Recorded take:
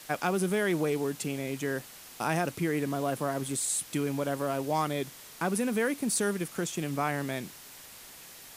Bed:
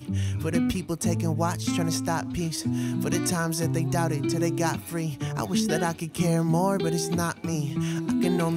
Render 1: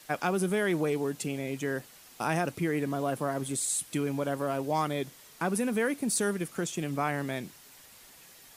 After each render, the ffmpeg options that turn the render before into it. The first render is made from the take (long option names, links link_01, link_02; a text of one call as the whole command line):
ffmpeg -i in.wav -af "afftdn=noise_reduction=6:noise_floor=-49" out.wav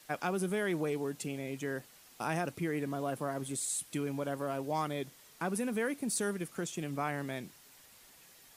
ffmpeg -i in.wav -af "volume=-5dB" out.wav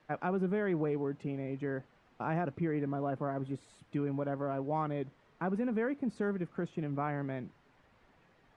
ffmpeg -i in.wav -af "lowpass=1600,lowshelf=frequency=200:gain=5" out.wav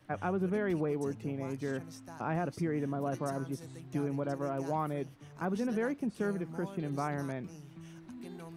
ffmpeg -i in.wav -i bed.wav -filter_complex "[1:a]volume=-22dB[link_01];[0:a][link_01]amix=inputs=2:normalize=0" out.wav